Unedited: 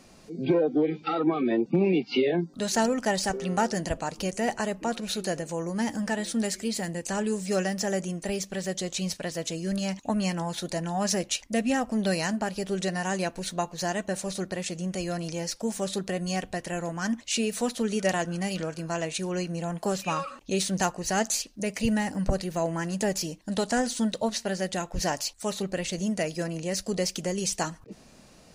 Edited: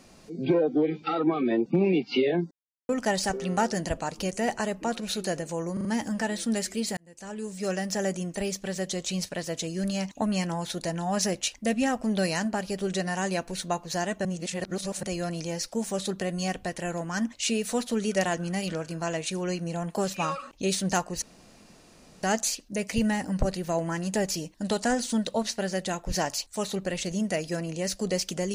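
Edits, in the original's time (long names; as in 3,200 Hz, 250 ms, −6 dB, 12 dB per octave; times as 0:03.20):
0:02.51–0:02.89: silence
0:05.73: stutter 0.04 s, 4 plays
0:06.85–0:07.87: fade in
0:14.13–0:14.91: reverse
0:21.10: splice in room tone 1.01 s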